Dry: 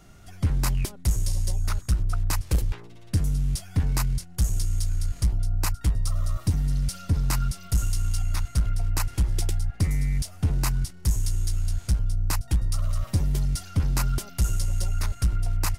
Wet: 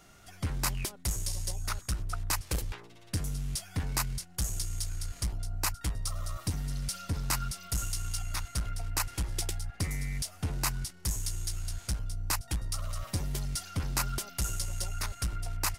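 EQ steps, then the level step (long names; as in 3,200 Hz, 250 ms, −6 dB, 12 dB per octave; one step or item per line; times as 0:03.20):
low-shelf EQ 220 Hz −5.5 dB
low-shelf EQ 460 Hz −5.5 dB
0.0 dB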